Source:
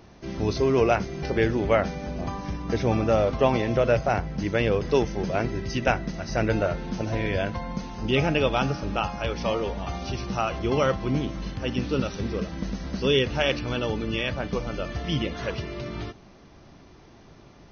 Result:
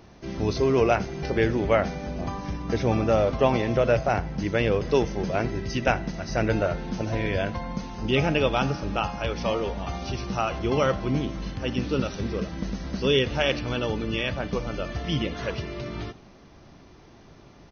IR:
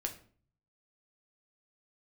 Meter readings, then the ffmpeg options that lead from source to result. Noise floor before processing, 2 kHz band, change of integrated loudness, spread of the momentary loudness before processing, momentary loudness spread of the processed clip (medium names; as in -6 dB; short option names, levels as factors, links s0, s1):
-50 dBFS, 0.0 dB, 0.0 dB, 10 LU, 10 LU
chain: -filter_complex "[0:a]asplit=4[s0][s1][s2][s3];[s1]adelay=85,afreqshift=65,volume=0.075[s4];[s2]adelay=170,afreqshift=130,volume=0.0331[s5];[s3]adelay=255,afreqshift=195,volume=0.0145[s6];[s0][s4][s5][s6]amix=inputs=4:normalize=0"